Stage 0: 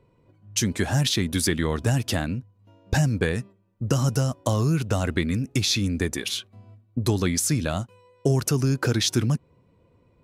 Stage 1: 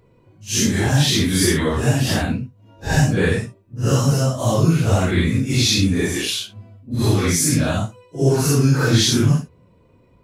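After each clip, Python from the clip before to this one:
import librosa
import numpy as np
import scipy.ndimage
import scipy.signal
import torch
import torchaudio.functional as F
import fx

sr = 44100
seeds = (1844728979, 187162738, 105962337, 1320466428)

y = fx.phase_scramble(x, sr, seeds[0], window_ms=200)
y = y * librosa.db_to_amplitude(6.5)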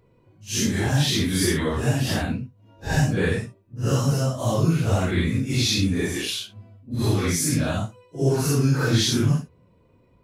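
y = fx.peak_eq(x, sr, hz=7300.0, db=-2.0, octaves=0.77)
y = y * librosa.db_to_amplitude(-4.5)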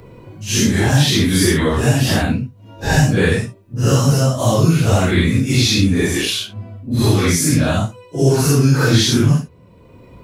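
y = fx.band_squash(x, sr, depth_pct=40)
y = y * librosa.db_to_amplitude(7.5)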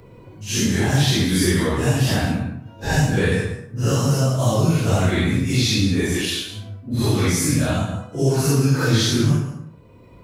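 y = fx.rev_plate(x, sr, seeds[1], rt60_s=0.7, hf_ratio=0.55, predelay_ms=105, drr_db=7.5)
y = y * librosa.db_to_amplitude(-5.0)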